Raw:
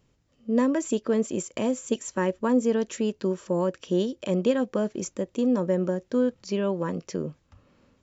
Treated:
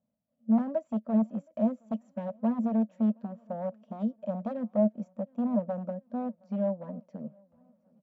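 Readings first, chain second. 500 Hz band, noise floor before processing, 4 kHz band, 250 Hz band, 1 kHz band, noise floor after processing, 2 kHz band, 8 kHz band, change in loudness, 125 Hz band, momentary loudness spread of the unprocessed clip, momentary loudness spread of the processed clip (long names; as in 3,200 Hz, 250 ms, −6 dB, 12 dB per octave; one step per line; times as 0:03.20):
−8.0 dB, −68 dBFS, below −25 dB, −2.5 dB, −4.5 dB, −79 dBFS, below −15 dB, can't be measured, −4.5 dB, −5.0 dB, 7 LU, 11 LU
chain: wave folding −20 dBFS
pair of resonant band-passes 370 Hz, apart 1.5 octaves
on a send: repeating echo 718 ms, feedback 53%, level −23 dB
on the sum: expander for the loud parts 1.5 to 1, over −47 dBFS
level +7 dB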